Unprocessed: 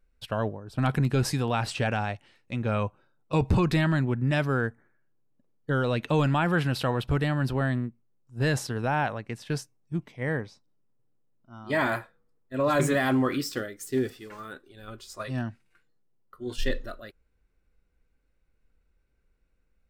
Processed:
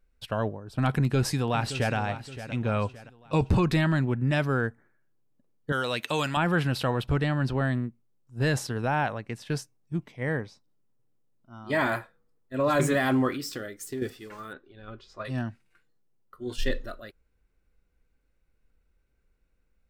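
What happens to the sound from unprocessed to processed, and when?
0.95–1.95 echo throw 0.57 s, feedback 40%, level -12.5 dB
5.72–6.37 tilt +3.5 dB/oct
7.11–7.64 LPF 8000 Hz
13.3–14.02 compressor, threshold -30 dBFS
14.53–15.25 air absorption 210 m

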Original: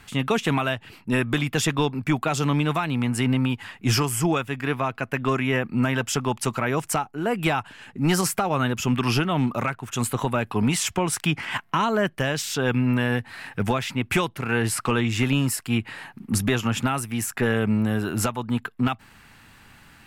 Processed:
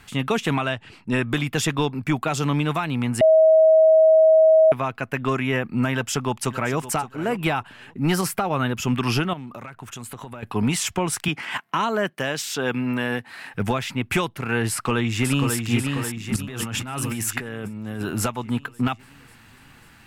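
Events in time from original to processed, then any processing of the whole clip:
0.57–1.31 LPF 9200 Hz 24 dB/oct
3.21–4.72 bleep 637 Hz -10.5 dBFS
5.93–6.79 echo throw 0.57 s, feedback 15%, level -14.5 dB
7.38–8.8 bell 7000 Hz -5.5 dB
9.33–10.43 compressor 10:1, threshold -32 dBFS
11.28–13.54 Bessel high-pass 210 Hz
14.7–15.57 echo throw 0.54 s, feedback 60%, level -4.5 dB
16.36–18.02 negative-ratio compressor -30 dBFS

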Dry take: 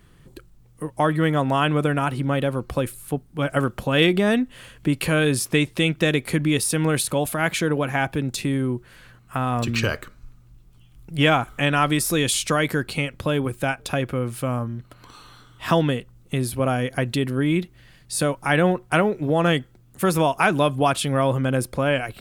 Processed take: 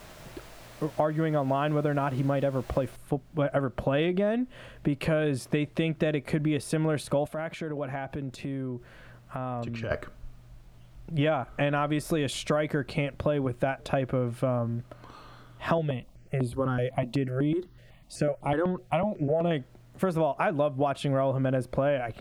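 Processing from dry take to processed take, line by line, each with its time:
2.96 noise floor step -41 dB -58 dB
7.27–9.91 compressor 4:1, threshold -32 dBFS
15.78–19.51 step phaser 8 Hz 270–5700 Hz
whole clip: LPF 1500 Hz 6 dB/oct; bell 620 Hz +8.5 dB 0.34 oct; compressor, threshold -23 dBFS

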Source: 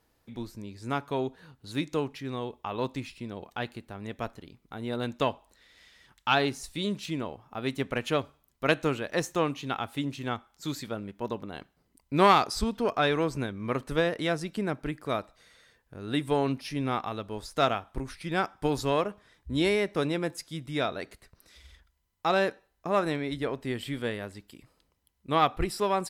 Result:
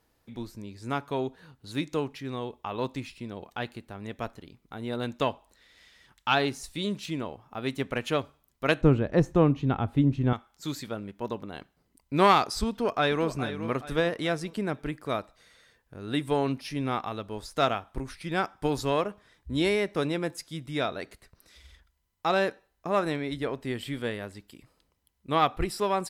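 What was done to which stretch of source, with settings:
8.81–10.33 tilt -4.5 dB/oct
12.69–13.27 echo throw 0.42 s, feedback 40%, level -11 dB

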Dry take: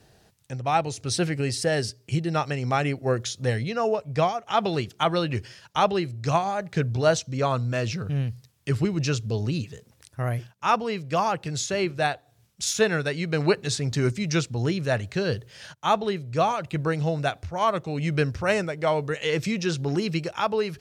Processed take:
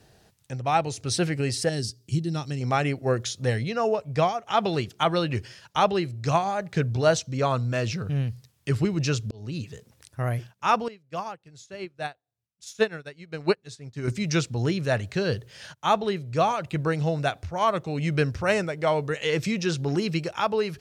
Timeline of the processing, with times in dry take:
1.69–2.61 band shelf 1100 Hz -11.5 dB 2.9 oct
9.31–9.73 fade in
10.88–14.08 upward expander 2.5:1, over -34 dBFS

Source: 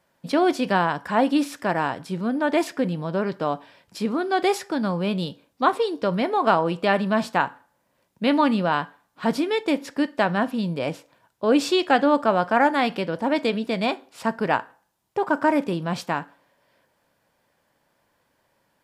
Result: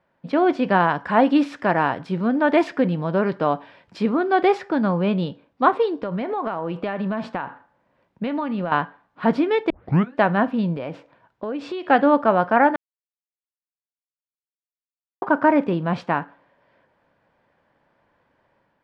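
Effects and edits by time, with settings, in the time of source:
0.8–4.11 high shelf 3500 Hz +7 dB
5.93–8.72 compressor 16:1, threshold -25 dBFS
9.7 tape start 0.46 s
10.74–11.87 compressor, threshold -29 dBFS
12.76–15.22 mute
whole clip: LPF 2300 Hz 12 dB/oct; AGC gain up to 4 dB

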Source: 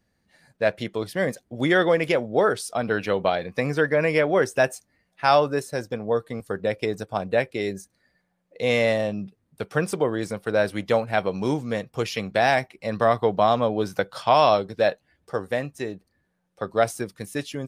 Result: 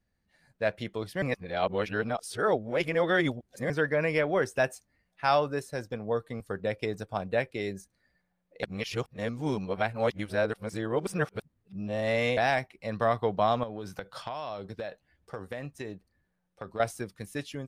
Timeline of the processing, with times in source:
1.22–3.7 reverse
8.63–12.37 reverse
13.63–16.8 compressor 12:1, threshold -26 dBFS
whole clip: bell 140 Hz -8.5 dB 2.6 oct; AGC gain up to 4 dB; tone controls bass +10 dB, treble -3 dB; gain -8.5 dB

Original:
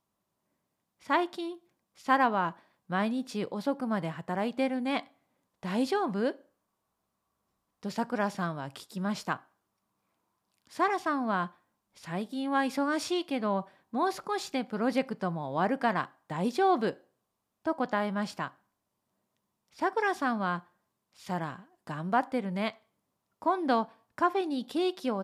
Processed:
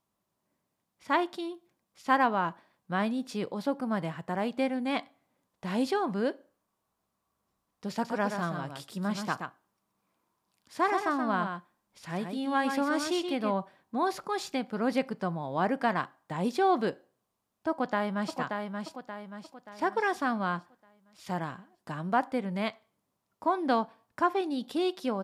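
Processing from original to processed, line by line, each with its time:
7.92–13.53 echo 0.126 s -6.5 dB
17.7–18.37 echo throw 0.58 s, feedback 45%, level -5 dB

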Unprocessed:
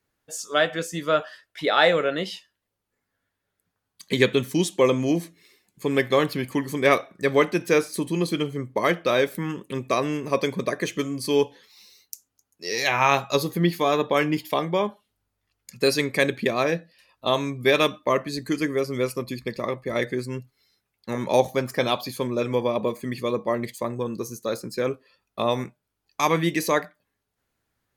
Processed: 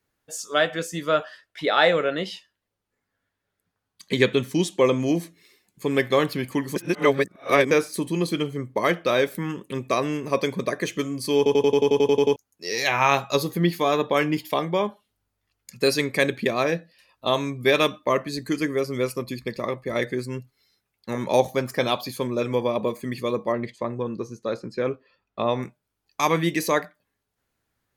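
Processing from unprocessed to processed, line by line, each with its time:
1.24–5 high shelf 9400 Hz -7 dB
6.76–7.71 reverse
11.37 stutter in place 0.09 s, 11 plays
23.52–25.63 Bessel low-pass 3000 Hz

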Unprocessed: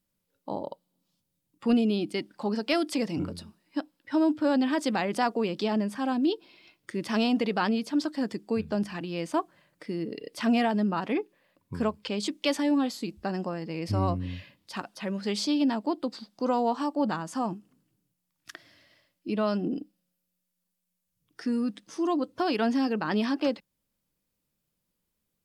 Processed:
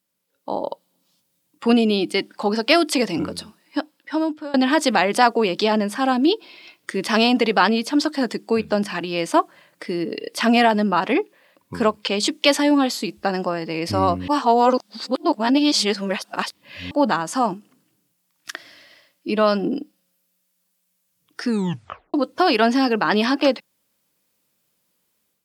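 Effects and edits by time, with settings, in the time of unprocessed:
3.41–4.54 fade out equal-power, to -23.5 dB
14.28–16.91 reverse
21.49 tape stop 0.65 s
whole clip: HPF 440 Hz 6 dB/oct; AGC gain up to 7.5 dB; gain +5 dB

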